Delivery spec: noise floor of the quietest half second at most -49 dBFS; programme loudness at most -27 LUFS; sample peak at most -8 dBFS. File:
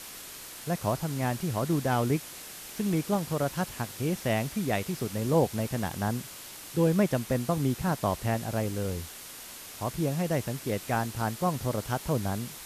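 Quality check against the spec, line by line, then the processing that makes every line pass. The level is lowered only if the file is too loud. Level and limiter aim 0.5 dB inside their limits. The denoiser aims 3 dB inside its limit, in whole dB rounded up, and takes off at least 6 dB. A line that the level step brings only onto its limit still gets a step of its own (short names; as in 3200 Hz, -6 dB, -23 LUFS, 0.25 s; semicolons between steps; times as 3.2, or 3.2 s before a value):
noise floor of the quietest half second -44 dBFS: fail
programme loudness -30.0 LUFS: OK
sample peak -12.0 dBFS: OK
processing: denoiser 8 dB, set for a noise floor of -44 dBFS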